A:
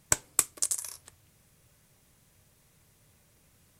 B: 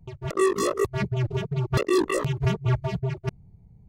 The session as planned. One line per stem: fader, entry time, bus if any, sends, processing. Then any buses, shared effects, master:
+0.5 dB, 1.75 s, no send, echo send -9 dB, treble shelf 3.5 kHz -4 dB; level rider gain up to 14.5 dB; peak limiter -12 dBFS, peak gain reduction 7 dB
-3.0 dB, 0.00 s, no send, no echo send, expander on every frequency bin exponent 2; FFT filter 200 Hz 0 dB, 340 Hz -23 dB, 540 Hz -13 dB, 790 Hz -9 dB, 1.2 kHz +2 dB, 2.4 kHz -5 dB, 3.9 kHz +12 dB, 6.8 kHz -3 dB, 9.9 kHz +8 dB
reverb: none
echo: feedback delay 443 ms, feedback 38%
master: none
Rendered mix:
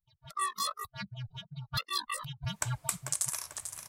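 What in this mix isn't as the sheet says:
stem A: entry 1.75 s -> 2.50 s; master: extra resonant low shelf 560 Hz -7.5 dB, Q 1.5

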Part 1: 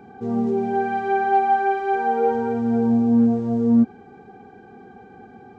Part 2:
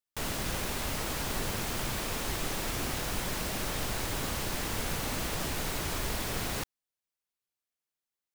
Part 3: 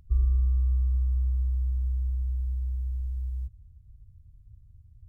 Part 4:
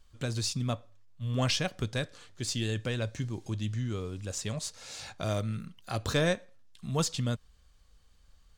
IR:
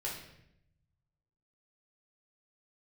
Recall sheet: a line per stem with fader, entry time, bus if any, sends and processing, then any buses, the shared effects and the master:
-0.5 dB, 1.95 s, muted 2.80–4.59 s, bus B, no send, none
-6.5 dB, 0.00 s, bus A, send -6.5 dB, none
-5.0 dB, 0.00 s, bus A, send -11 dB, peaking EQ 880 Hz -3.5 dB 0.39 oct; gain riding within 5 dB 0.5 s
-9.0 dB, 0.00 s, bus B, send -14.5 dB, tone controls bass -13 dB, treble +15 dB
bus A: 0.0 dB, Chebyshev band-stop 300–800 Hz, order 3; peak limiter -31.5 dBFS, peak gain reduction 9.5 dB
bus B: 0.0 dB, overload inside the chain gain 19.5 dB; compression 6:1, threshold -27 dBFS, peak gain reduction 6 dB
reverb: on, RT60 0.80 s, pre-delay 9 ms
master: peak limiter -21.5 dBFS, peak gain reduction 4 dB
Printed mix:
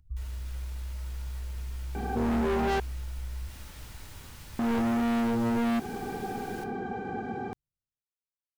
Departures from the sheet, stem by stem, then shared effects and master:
stem 1 -0.5 dB -> +9.5 dB; stem 2 -6.5 dB -> -16.5 dB; stem 4: muted

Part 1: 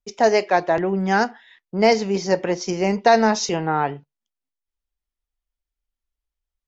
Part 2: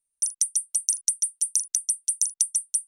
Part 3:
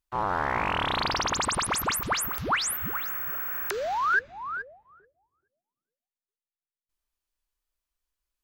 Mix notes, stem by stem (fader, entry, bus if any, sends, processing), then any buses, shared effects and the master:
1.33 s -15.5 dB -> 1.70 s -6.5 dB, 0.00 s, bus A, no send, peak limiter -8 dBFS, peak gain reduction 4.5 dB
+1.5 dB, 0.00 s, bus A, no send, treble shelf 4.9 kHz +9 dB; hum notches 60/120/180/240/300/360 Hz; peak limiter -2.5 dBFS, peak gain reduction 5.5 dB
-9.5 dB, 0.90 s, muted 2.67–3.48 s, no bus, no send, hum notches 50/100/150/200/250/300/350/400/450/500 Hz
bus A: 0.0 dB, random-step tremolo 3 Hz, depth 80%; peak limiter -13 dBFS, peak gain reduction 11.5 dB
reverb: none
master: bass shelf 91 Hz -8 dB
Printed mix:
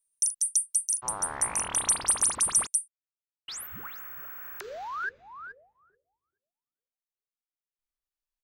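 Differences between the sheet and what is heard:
stem 1: muted; master: missing bass shelf 91 Hz -8 dB

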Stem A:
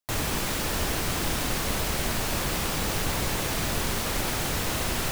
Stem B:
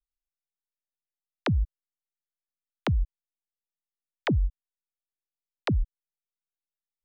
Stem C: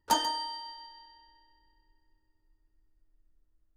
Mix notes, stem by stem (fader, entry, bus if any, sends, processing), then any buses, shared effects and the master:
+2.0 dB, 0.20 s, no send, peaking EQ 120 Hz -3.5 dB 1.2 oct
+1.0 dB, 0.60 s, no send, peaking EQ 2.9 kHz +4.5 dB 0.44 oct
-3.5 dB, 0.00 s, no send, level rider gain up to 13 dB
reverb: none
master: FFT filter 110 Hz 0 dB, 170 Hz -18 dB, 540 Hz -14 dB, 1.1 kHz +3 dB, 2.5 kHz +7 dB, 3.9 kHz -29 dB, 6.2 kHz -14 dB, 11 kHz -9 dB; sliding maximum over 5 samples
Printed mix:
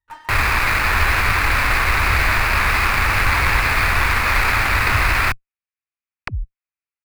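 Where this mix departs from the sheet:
stem A +2.0 dB -> +13.0 dB; stem C -3.5 dB -> -10.0 dB

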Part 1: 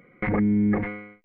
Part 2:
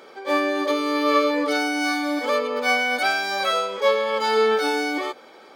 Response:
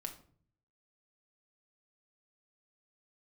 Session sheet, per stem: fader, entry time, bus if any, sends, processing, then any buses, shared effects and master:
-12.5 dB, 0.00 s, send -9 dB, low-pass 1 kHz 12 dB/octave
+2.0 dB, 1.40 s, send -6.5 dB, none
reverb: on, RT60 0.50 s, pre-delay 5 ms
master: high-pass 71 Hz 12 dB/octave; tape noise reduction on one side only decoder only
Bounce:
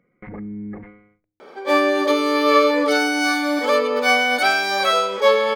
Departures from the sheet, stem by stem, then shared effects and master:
stem 1: missing low-pass 1 kHz 12 dB/octave; master: missing high-pass 71 Hz 12 dB/octave

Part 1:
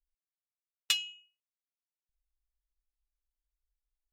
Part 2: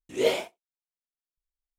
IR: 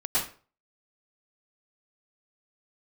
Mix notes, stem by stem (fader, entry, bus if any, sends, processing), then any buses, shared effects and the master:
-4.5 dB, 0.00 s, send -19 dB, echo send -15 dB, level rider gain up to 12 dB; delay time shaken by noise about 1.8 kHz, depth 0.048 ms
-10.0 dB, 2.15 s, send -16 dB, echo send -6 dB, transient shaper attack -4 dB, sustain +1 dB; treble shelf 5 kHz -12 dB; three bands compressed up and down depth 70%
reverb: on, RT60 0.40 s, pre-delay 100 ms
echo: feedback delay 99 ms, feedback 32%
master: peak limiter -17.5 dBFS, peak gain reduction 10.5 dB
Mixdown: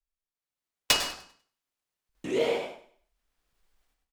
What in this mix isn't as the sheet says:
stem 2 -10.0 dB -> +0.5 dB; master: missing peak limiter -17.5 dBFS, peak gain reduction 10.5 dB

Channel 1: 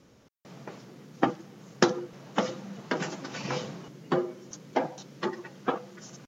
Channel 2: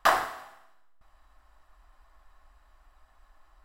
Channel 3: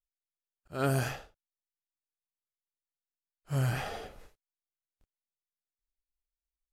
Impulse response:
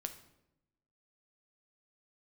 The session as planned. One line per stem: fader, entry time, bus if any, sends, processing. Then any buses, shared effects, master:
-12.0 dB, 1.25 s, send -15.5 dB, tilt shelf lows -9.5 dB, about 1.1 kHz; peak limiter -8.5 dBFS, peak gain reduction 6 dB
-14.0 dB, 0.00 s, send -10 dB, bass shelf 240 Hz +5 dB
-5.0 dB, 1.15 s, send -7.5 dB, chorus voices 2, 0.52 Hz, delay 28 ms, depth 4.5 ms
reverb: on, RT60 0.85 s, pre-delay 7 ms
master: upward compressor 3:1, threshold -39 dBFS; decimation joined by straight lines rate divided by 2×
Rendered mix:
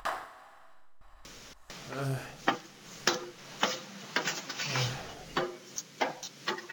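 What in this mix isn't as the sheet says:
stem 1 -12.0 dB -> -1.5 dB; stem 2: missing bass shelf 240 Hz +5 dB; stem 3: send -7.5 dB -> -14 dB

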